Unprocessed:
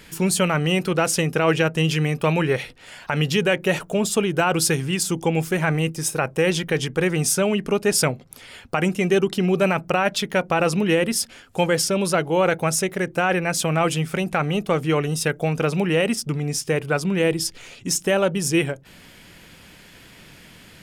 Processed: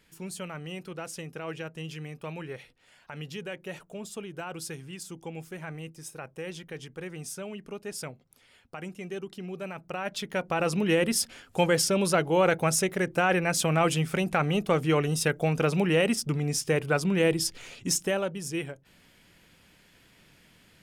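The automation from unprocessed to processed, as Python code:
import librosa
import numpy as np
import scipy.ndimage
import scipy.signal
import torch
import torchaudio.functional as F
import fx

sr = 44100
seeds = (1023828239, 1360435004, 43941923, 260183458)

y = fx.gain(x, sr, db=fx.line((9.73, -18.0), (10.17, -10.5), (11.11, -3.5), (17.91, -3.5), (18.35, -12.5)))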